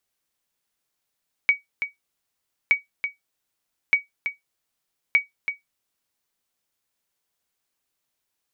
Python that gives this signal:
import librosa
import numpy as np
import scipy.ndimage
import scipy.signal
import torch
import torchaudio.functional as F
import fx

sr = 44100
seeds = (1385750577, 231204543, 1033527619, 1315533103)

y = fx.sonar_ping(sr, hz=2260.0, decay_s=0.15, every_s=1.22, pings=4, echo_s=0.33, echo_db=-9.0, level_db=-8.5)